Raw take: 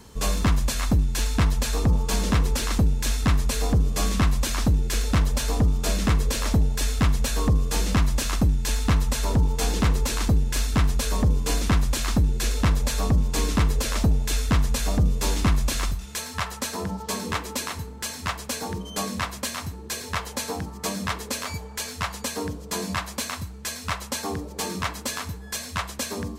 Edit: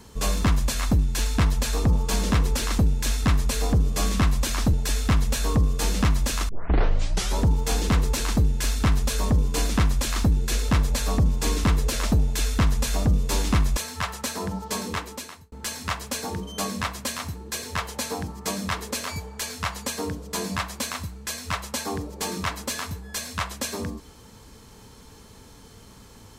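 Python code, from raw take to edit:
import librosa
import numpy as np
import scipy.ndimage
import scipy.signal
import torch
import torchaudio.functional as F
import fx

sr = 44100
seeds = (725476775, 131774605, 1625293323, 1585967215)

y = fx.edit(x, sr, fx.cut(start_s=4.73, length_s=1.92),
    fx.tape_start(start_s=8.41, length_s=0.9),
    fx.cut(start_s=15.69, length_s=0.46),
    fx.fade_out_span(start_s=17.2, length_s=0.7), tone=tone)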